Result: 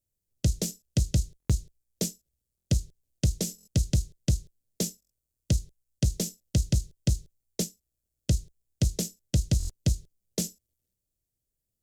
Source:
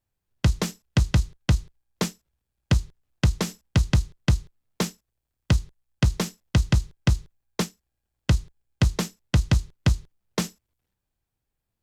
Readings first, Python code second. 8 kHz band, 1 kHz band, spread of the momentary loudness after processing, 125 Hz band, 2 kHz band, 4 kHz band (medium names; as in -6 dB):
+2.5 dB, under -15 dB, 6 LU, -4.5 dB, -15.0 dB, -4.5 dB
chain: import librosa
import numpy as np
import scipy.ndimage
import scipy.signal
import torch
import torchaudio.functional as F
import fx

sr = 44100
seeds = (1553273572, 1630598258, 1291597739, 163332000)

y = fx.curve_eq(x, sr, hz=(610.0, 1000.0, 6900.0), db=(0, -22, 8))
y = fx.buffer_glitch(y, sr, at_s=(1.38, 2.56, 3.56, 5.0, 9.58), block=1024, repeats=4)
y = y * librosa.db_to_amplitude(-4.5)